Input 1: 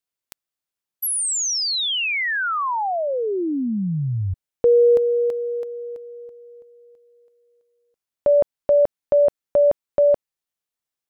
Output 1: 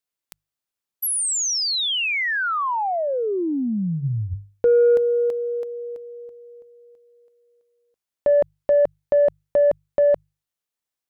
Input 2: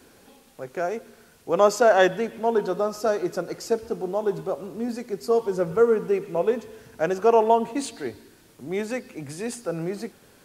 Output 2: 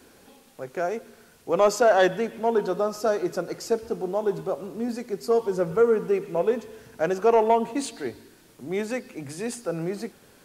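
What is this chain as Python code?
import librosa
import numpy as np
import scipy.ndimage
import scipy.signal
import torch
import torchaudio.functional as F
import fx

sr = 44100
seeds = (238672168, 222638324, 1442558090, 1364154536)

y = 10.0 ** (-8.5 / 20.0) * np.tanh(x / 10.0 ** (-8.5 / 20.0))
y = fx.hum_notches(y, sr, base_hz=50, count=3)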